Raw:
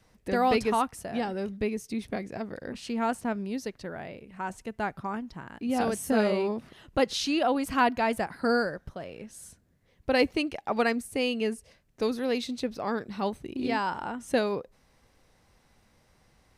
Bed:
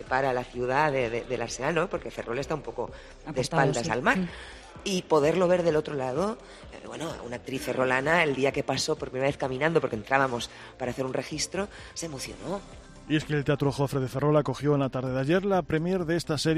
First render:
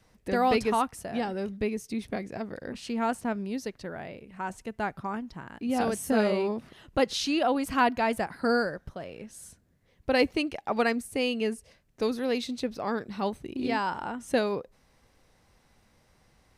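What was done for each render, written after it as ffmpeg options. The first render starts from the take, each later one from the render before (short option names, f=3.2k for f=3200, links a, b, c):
-af anull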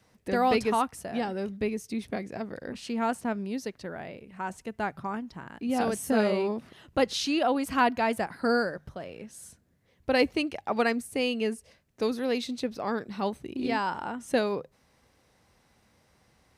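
-af "highpass=56,bandreject=f=50:t=h:w=6,bandreject=f=100:t=h:w=6,bandreject=f=150:t=h:w=6"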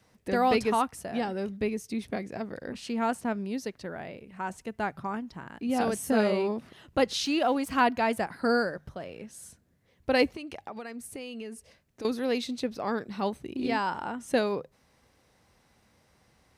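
-filter_complex "[0:a]asettb=1/sr,asplit=3[a][b][c];[a]atrim=end=7.254[d];[b]atrim=start=7.25:end=7.78,asetpts=PTS-STARTPTS,afade=t=in:d=0.004:c=qsin,afade=t=out:st=0.526:d=0.004:c=qsin,aeval=exprs='sgn(val(0))*max(abs(val(0))-0.00237,0)':c=same[e];[c]atrim=start=7.776[f];[d][e]acrossfade=d=0.004:c1=hsin:c2=qsin[g];[g][f]acrossfade=d=0.004:c1=qsin:c2=hsin,asettb=1/sr,asplit=3[h][i][j];[h]atrim=end=10.274[k];[i]atrim=start=10.27:end=12.05,asetpts=PTS-STARTPTS,afade=t=in:d=0.004:c=qsin,afade=t=out:st=1.776:d=0.004:c=qsin,acompressor=threshold=-35dB:ratio=12:attack=3.2:release=140:knee=1:detection=peak[l];[j]atrim=start=12.046[m];[k][l]acrossfade=d=0.004:c1=hsin:c2=qsin[n];[n][m]acrossfade=d=0.004:c1=qsin:c2=hsin"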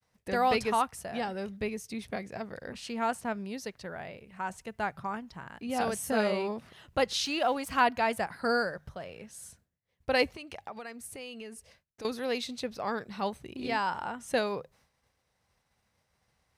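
-af "agate=range=-33dB:threshold=-57dB:ratio=3:detection=peak,equalizer=f=290:w=1.2:g=-8"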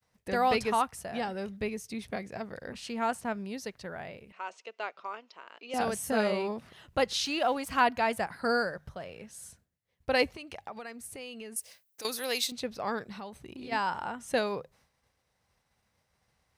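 -filter_complex "[0:a]asettb=1/sr,asplit=3[a][b][c];[a]atrim=end=4.324[d];[b]atrim=start=4.32:end=5.74,asetpts=PTS-STARTPTS,afade=t=in:d=0.004:c=qsin,afade=t=out:st=1.416:d=0.004:c=qsin,highpass=f=410:w=0.5412,highpass=f=410:w=1.3066,equalizer=f=810:t=q:w=4:g=-8,equalizer=f=1.7k:t=q:w=4:g=-8,equalizer=f=2.7k:t=q:w=4:g=5,lowpass=f=6k:w=0.5412,lowpass=f=6k:w=1.3066[e];[c]atrim=start=5.736[f];[d][e]acrossfade=d=0.004:c1=hsin:c2=qsin[g];[g][f]acrossfade=d=0.004:c1=qsin:c2=hsin,asettb=1/sr,asplit=3[h][i][j];[h]atrim=end=11.564[k];[i]atrim=start=11.56:end=12.52,asetpts=PTS-STARTPTS,afade=t=in:d=0.004:c=qsin,afade=t=out:st=0.956:d=0.004:c=qsin,aemphasis=mode=production:type=riaa[l];[j]atrim=start=12.516[m];[k][l]acrossfade=d=0.004:c1=hsin:c2=qsin[n];[n][m]acrossfade=d=0.004:c1=qsin:c2=hsin,asplit=3[o][p][q];[o]afade=t=out:st=13.12:d=0.02[r];[p]acompressor=threshold=-40dB:ratio=4:attack=3.2:release=140:knee=1:detection=peak,afade=t=in:st=13.12:d=0.02,afade=t=out:st=13.71:d=0.02[s];[q]afade=t=in:st=13.71:d=0.02[t];[r][s][t]amix=inputs=3:normalize=0"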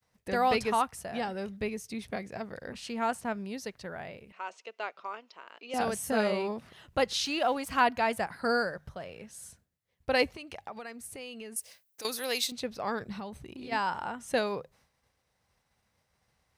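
-filter_complex "[0:a]asettb=1/sr,asplit=3[a][b][c];[a]atrim=end=13.014[d];[b]atrim=start=13.01:end=13.44,asetpts=PTS-STARTPTS,afade=t=in:d=0.004:c=qsin,afade=t=out:st=0.426:d=0.004:c=qsin,equalizer=f=70:w=0.34:g=8.5[e];[c]atrim=start=13.436[f];[d][e]acrossfade=d=0.004:c1=hsin:c2=qsin[g];[g][f]acrossfade=d=0.004:c1=qsin:c2=hsin"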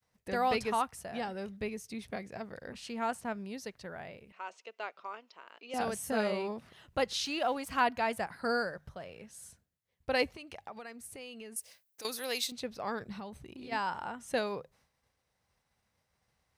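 -af "volume=-3.5dB"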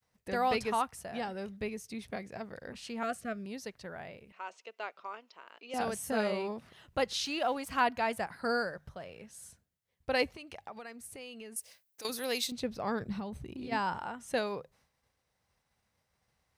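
-filter_complex "[0:a]asettb=1/sr,asplit=3[a][b][c];[a]atrim=end=3.034[d];[b]atrim=start=3.03:end=3.46,asetpts=PTS-STARTPTS,afade=t=in:d=0.004:c=qsin,afade=t=out:st=0.426:d=0.004:c=qsin,asuperstop=centerf=910:order=20:qfactor=2.4[e];[c]atrim=start=3.456[f];[d][e]acrossfade=d=0.004:c1=hsin:c2=qsin[g];[g][f]acrossfade=d=0.004:c1=qsin:c2=hsin,asettb=1/sr,asplit=3[h][i][j];[h]atrim=end=12.094[k];[i]atrim=start=12.09:end=13.98,asetpts=PTS-STARTPTS,afade=t=in:d=0.004:c=qsin,afade=t=out:st=1.886:d=0.004:c=qsin,lowshelf=f=350:g=8.5[l];[j]atrim=start=13.976[m];[k][l]acrossfade=d=0.004:c1=hsin:c2=qsin[n];[n][m]acrossfade=d=0.004:c1=qsin:c2=hsin"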